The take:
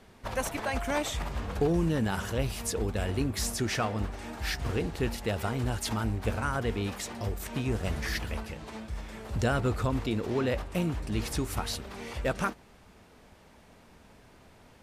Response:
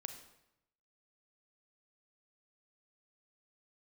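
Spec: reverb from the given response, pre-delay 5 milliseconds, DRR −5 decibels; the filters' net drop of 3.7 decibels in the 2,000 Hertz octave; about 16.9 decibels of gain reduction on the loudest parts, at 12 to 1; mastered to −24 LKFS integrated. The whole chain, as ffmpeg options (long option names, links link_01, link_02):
-filter_complex "[0:a]equalizer=frequency=2000:width_type=o:gain=-5,acompressor=threshold=-40dB:ratio=12,asplit=2[link_01][link_02];[1:a]atrim=start_sample=2205,adelay=5[link_03];[link_02][link_03]afir=irnorm=-1:irlink=0,volume=8dB[link_04];[link_01][link_04]amix=inputs=2:normalize=0,volume=14.5dB"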